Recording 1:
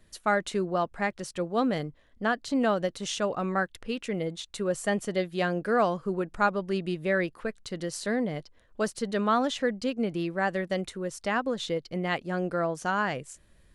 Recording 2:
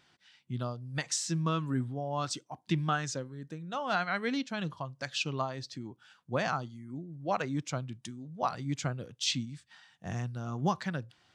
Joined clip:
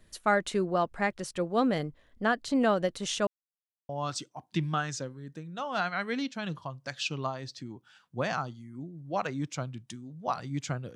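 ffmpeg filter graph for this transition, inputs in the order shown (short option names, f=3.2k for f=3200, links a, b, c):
-filter_complex "[0:a]apad=whole_dur=10.95,atrim=end=10.95,asplit=2[a][b];[a]atrim=end=3.27,asetpts=PTS-STARTPTS,afade=t=out:st=3.266:d=0.004:c=hsin[c];[b]atrim=start=3.27:end=3.89,asetpts=PTS-STARTPTS,volume=0[d];[1:a]atrim=start=2.04:end=9.1,asetpts=PTS-STARTPTS,afade=t=in:d=0.004:c=hsin[e];[c][d][e]concat=n=3:v=0:a=1"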